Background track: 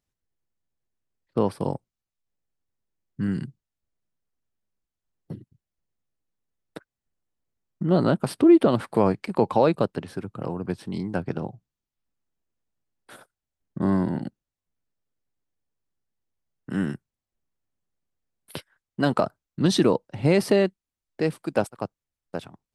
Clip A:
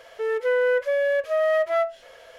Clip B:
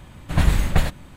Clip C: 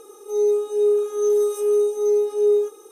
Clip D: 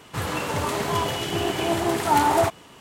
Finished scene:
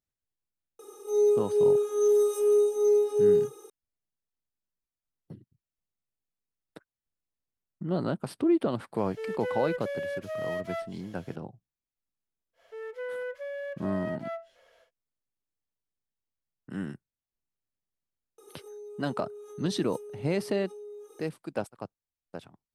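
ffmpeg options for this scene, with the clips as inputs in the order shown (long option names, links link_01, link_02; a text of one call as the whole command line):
ffmpeg -i bed.wav -i cue0.wav -i cue1.wav -i cue2.wav -filter_complex "[3:a]asplit=2[link_01][link_02];[1:a]asplit=2[link_03][link_04];[0:a]volume=-9dB[link_05];[link_03]equalizer=frequency=960:width=0.38:gain=-12[link_06];[link_02]acompressor=threshold=-34dB:ratio=6:attack=3.2:release=140:knee=1:detection=peak[link_07];[link_01]atrim=end=2.91,asetpts=PTS-STARTPTS,volume=-3.5dB,afade=type=in:duration=0.004:curve=hsin,afade=type=out:start_time=2.906:duration=0.004:curve=hsin,adelay=790[link_08];[link_06]atrim=end=2.38,asetpts=PTS-STARTPTS,volume=-2dB,afade=type=in:duration=0.004:curve=hsin,afade=type=out:start_time=2.376:duration=0.004:curve=hsin,adelay=396018S[link_09];[link_04]atrim=end=2.38,asetpts=PTS-STARTPTS,volume=-14.5dB,afade=type=in:duration=0.1,afade=type=out:start_time=2.28:duration=0.1,adelay=12530[link_10];[link_07]atrim=end=2.91,asetpts=PTS-STARTPTS,volume=-9.5dB,afade=type=in:duration=0.004:curve=hsin,afade=type=out:start_time=2.906:duration=0.004:curve=hsin,adelay=18380[link_11];[link_05][link_08][link_09][link_10][link_11]amix=inputs=5:normalize=0" out.wav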